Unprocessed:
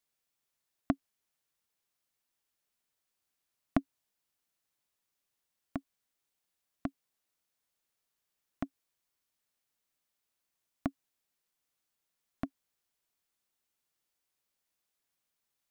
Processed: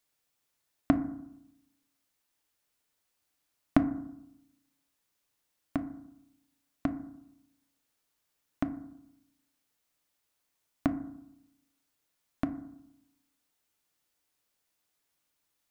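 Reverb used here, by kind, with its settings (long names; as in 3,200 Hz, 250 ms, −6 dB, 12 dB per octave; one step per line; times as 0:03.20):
feedback delay network reverb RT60 0.8 s, low-frequency decay 1.25×, high-frequency decay 0.3×, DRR 8 dB
level +4.5 dB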